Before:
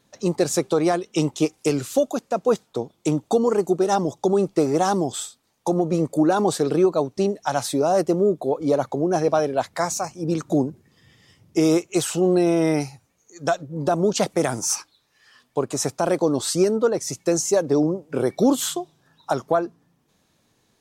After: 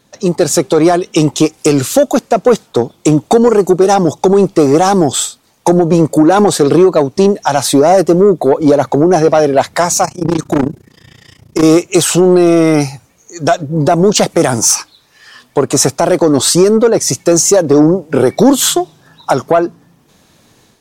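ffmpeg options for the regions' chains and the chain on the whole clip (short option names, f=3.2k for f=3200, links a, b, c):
-filter_complex "[0:a]asettb=1/sr,asplit=3[a][b][c];[a]atrim=end=10.054[d];[b]atrim=start=10.05:end=11.63,asetpts=PTS-STARTPTS,afade=t=in:d=0.004:c=qsin,afade=t=out:st=1.576:d=0.004:c=qsin,tremolo=f=29:d=0.919,asoftclip=type=hard:threshold=-23.5dB[e];[c]atrim=start=11.626[f];[d][e]acrossfade=d=0.004:c1=hsin:c2=qsin[g];[g][f]acrossfade=d=0.004:c1=qsin:c2=hsin,dynaudnorm=f=430:g=3:m=8dB,alimiter=limit=-7.5dB:level=0:latency=1:release=170,acontrast=89,volume=2.5dB"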